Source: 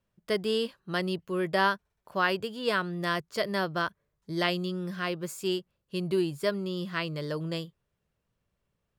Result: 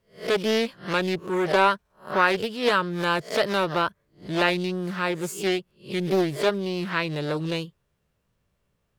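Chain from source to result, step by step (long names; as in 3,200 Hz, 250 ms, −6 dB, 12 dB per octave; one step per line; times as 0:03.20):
peak hold with a rise ahead of every peak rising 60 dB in 0.31 s
highs frequency-modulated by the lows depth 0.42 ms
level +5 dB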